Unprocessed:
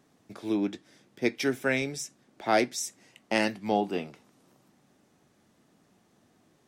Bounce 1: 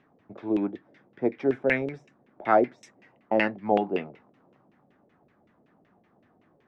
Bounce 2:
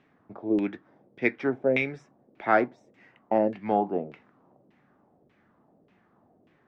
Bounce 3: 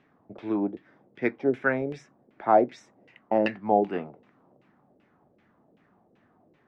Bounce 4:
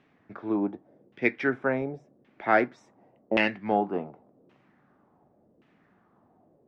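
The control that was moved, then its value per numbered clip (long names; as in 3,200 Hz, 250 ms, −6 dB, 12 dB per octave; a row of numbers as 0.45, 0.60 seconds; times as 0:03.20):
auto-filter low-pass, speed: 5.3, 1.7, 2.6, 0.89 Hertz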